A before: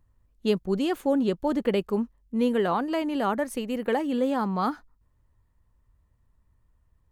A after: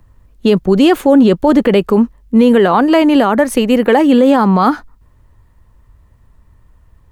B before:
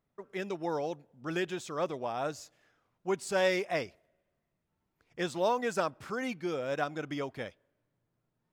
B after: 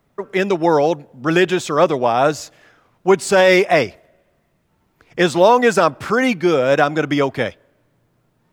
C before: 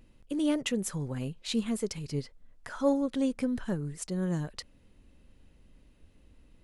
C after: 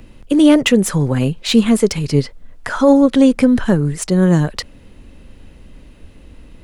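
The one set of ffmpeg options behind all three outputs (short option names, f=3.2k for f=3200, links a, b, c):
-filter_complex "[0:a]bass=f=250:g=-1,treble=f=4k:g=-3,acrossover=split=110|1400|2900[a][b][c][d];[d]asoftclip=type=tanh:threshold=-33.5dB[e];[a][b][c][e]amix=inputs=4:normalize=0,alimiter=level_in=20dB:limit=-1dB:release=50:level=0:latency=1,volume=-1dB"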